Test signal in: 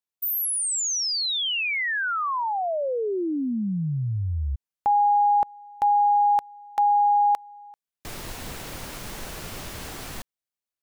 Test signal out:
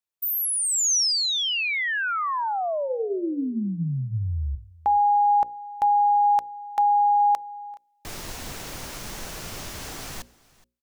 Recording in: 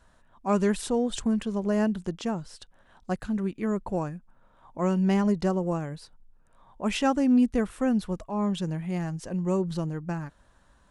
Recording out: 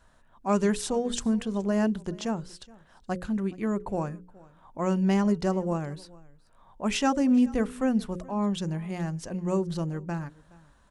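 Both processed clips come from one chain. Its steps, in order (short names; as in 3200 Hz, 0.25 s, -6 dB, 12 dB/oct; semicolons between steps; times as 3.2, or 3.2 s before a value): notches 60/120/180/240/300/360/420/480/540 Hz; dynamic EQ 6000 Hz, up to +5 dB, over -48 dBFS, Q 1.7; echo 0.421 s -23 dB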